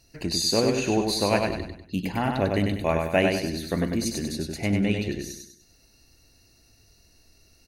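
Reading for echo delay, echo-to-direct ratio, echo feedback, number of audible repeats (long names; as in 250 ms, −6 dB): 98 ms, −3.0 dB, 40%, 4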